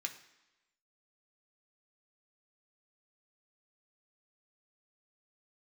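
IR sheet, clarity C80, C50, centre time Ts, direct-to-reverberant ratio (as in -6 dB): 14.0 dB, 11.5 dB, 13 ms, 3.5 dB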